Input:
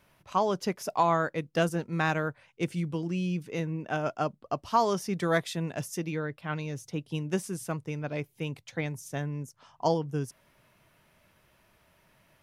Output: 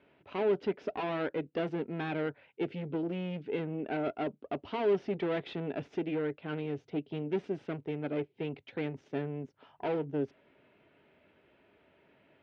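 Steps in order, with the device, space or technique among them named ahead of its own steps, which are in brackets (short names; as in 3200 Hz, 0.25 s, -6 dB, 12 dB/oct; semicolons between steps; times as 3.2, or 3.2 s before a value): guitar amplifier (tube stage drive 33 dB, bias 0.55; tone controls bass -1 dB, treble -7 dB; speaker cabinet 100–3400 Hz, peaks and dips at 120 Hz -7 dB, 170 Hz -4 dB, 280 Hz +7 dB, 410 Hz +9 dB, 1100 Hz -9 dB, 1800 Hz -3 dB); gain +3 dB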